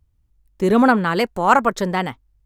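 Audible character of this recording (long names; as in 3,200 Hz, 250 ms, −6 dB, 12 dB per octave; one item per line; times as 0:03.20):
background noise floor −64 dBFS
spectral slope −4.5 dB per octave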